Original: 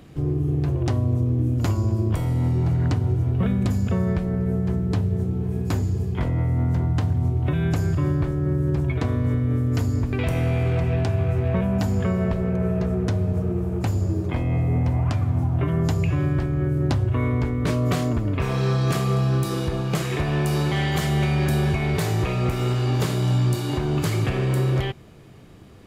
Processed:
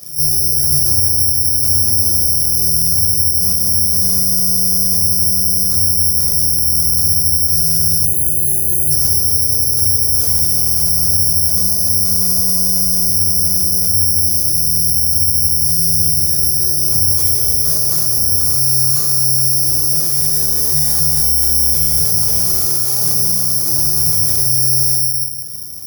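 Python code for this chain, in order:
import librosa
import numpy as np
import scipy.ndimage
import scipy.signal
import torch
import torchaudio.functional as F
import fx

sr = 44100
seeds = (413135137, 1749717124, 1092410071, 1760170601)

y = fx.hum_notches(x, sr, base_hz=60, count=6)
y = y + 10.0 ** (-15.5 / 20.0) * np.pad(y, (int(168 * sr / 1000.0), 0))[:len(y)]
y = fx.room_shoebox(y, sr, seeds[0], volume_m3=890.0, walls='furnished', distance_m=5.9)
y = fx.rider(y, sr, range_db=5, speed_s=2.0)
y = (np.kron(scipy.signal.resample_poly(y, 1, 8), np.eye(8)[0]) * 8)[:len(y)]
y = scipy.signal.sosfilt(scipy.signal.butter(2, 61.0, 'highpass', fs=sr, output='sos'), y)
y = fx.quant_float(y, sr, bits=2)
y = fx.dynamic_eq(y, sr, hz=2800.0, q=1.4, threshold_db=-37.0, ratio=4.0, max_db=-8)
y = fx.spec_erase(y, sr, start_s=8.05, length_s=0.86, low_hz=870.0, high_hz=6100.0)
y = fx.high_shelf(y, sr, hz=7200.0, db=9.0)
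y = fx.notch_cascade(y, sr, direction='falling', hz=1.1, at=(14.21, 16.28), fade=0.02)
y = y * 10.0 ** (-10.5 / 20.0)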